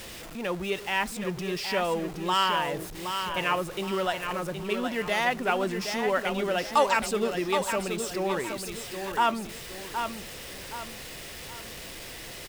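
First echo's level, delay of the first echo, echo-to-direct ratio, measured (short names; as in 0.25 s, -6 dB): -7.0 dB, 0.77 s, -6.5 dB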